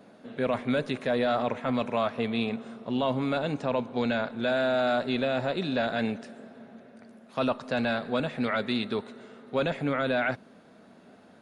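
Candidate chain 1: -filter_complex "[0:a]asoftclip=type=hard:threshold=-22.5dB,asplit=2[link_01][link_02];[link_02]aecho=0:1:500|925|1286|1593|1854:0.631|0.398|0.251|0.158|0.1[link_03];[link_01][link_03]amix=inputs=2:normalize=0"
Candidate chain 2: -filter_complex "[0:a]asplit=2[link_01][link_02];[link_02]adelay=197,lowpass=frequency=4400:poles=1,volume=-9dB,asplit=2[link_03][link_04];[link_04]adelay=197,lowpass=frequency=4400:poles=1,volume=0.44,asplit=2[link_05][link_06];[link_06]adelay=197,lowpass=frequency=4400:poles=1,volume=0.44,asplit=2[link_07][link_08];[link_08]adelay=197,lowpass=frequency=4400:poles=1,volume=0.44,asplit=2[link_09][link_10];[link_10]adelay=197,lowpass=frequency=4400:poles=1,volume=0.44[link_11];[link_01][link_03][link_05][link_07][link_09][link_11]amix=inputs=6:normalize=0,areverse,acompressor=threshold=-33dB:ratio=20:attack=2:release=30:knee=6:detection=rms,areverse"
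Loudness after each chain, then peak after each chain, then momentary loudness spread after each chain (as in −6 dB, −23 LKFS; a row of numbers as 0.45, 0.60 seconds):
−28.5, −38.5 LKFS; −14.5, −26.5 dBFS; 7, 9 LU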